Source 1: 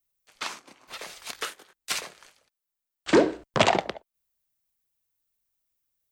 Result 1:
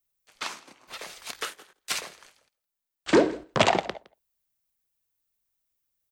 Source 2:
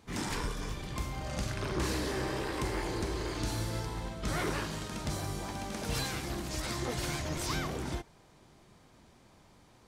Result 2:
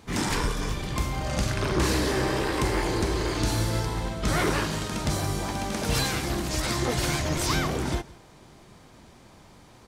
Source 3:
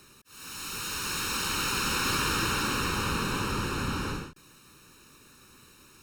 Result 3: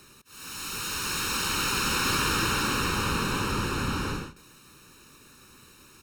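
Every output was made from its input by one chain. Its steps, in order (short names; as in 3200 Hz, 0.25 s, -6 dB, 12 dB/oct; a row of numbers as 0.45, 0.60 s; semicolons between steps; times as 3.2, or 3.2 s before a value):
echo 0.164 s -22.5 dB; match loudness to -27 LUFS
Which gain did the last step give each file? -0.5, +8.5, +2.0 dB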